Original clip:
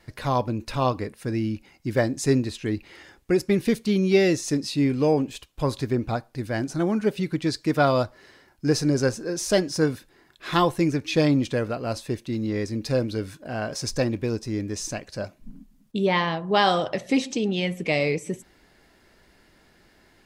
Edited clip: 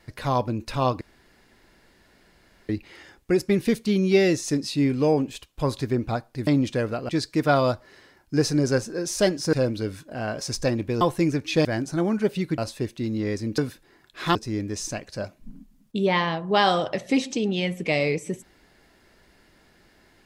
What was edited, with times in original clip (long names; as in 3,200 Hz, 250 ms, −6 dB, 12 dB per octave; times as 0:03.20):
0:01.01–0:02.69: fill with room tone
0:06.47–0:07.40: swap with 0:11.25–0:11.87
0:09.84–0:10.61: swap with 0:12.87–0:14.35